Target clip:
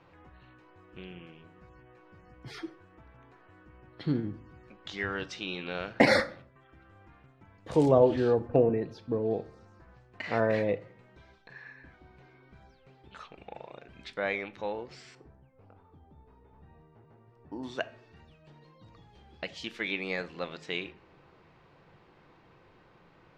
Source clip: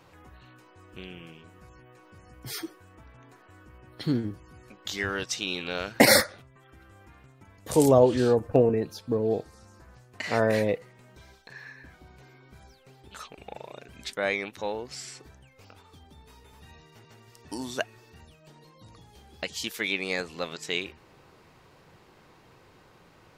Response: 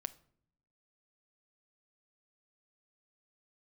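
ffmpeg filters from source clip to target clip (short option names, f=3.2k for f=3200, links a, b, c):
-filter_complex "[0:a]asetnsamples=n=441:p=0,asendcmd='15.15 lowpass f 1000;17.63 lowpass f 3300',lowpass=3.1k[a];[1:a]atrim=start_sample=2205,afade=t=out:st=0.43:d=0.01,atrim=end_sample=19404,asetrate=48510,aresample=44100[b];[a][b]afir=irnorm=-1:irlink=0"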